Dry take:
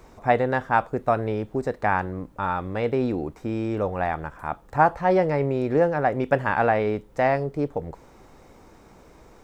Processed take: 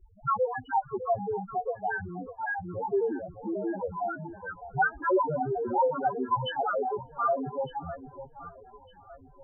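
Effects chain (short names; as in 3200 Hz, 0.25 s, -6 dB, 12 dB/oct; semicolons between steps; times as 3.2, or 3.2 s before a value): trilling pitch shifter +10.5 st, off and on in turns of 91 ms; loudest bins only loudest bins 2; echo with dull and thin repeats by turns 0.604 s, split 920 Hz, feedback 56%, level -12 dB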